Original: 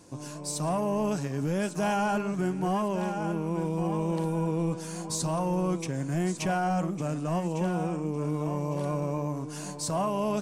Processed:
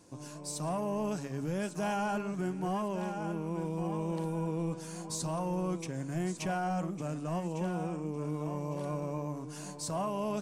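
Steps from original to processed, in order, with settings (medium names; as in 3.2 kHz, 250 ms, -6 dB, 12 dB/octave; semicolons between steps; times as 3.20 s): de-hum 47 Hz, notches 3; trim -5.5 dB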